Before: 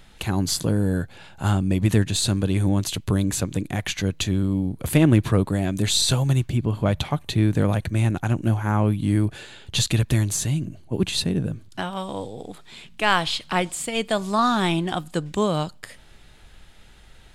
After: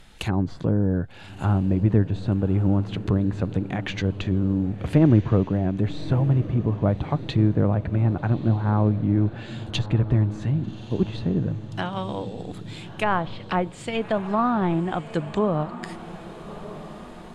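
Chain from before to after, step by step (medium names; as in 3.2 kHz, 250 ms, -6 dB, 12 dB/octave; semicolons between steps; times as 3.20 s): low-pass that closes with the level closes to 1.1 kHz, closed at -19.5 dBFS; echo that smears into a reverb 1214 ms, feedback 54%, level -14 dB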